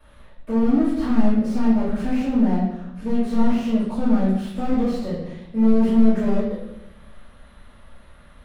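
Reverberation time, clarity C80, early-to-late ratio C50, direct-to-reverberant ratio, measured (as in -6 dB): 0.80 s, 4.5 dB, 1.0 dB, -13.0 dB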